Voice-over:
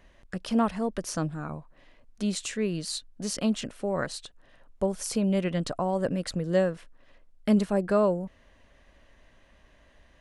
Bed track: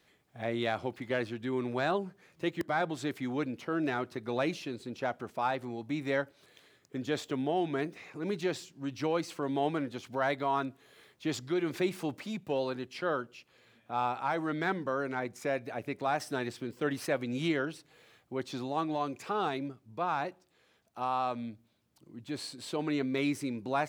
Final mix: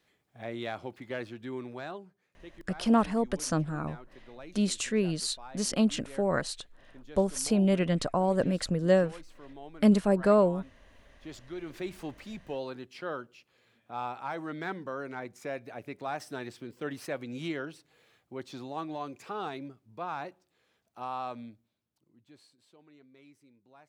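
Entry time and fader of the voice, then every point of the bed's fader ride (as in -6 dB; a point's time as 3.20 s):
2.35 s, +1.0 dB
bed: 1.52 s -4.5 dB
2.30 s -16.5 dB
10.74 s -16.5 dB
12.06 s -4.5 dB
21.40 s -4.5 dB
22.83 s -27 dB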